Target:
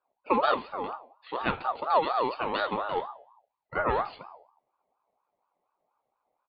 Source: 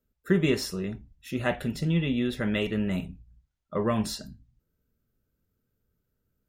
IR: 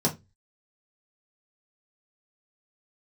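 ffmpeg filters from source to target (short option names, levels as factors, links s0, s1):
-filter_complex "[0:a]aresample=8000,aresample=44100,bandreject=f=194:t=h:w=4,bandreject=f=388:t=h:w=4,bandreject=f=582:t=h:w=4,bandreject=f=776:t=h:w=4,bandreject=f=970:t=h:w=4,bandreject=f=1164:t=h:w=4,bandreject=f=1358:t=h:w=4,bandreject=f=1552:t=h:w=4,bandreject=f=1746:t=h:w=4,bandreject=f=1940:t=h:w=4,bandreject=f=2134:t=h:w=4,bandreject=f=2328:t=h:w=4,bandreject=f=2522:t=h:w=4,bandreject=f=2716:t=h:w=4,bandreject=f=2910:t=h:w=4,bandreject=f=3104:t=h:w=4,bandreject=f=3298:t=h:w=4,bandreject=f=3492:t=h:w=4,bandreject=f=3686:t=h:w=4,bandreject=f=3880:t=h:w=4,bandreject=f=4074:t=h:w=4,bandreject=f=4268:t=h:w=4,bandreject=f=4462:t=h:w=4,bandreject=f=4656:t=h:w=4,bandreject=f=4850:t=h:w=4,bandreject=f=5044:t=h:w=4,bandreject=f=5238:t=h:w=4,bandreject=f=5432:t=h:w=4,bandreject=f=5626:t=h:w=4,bandreject=f=5820:t=h:w=4,bandreject=f=6014:t=h:w=4,bandreject=f=6208:t=h:w=4,bandreject=f=6402:t=h:w=4,bandreject=f=6596:t=h:w=4,bandreject=f=6790:t=h:w=4,asplit=2[s0][s1];[1:a]atrim=start_sample=2205[s2];[s1][s2]afir=irnorm=-1:irlink=0,volume=0.0596[s3];[s0][s3]amix=inputs=2:normalize=0,aeval=exprs='val(0)*sin(2*PI*830*n/s+830*0.25/4.2*sin(2*PI*4.2*n/s))':c=same"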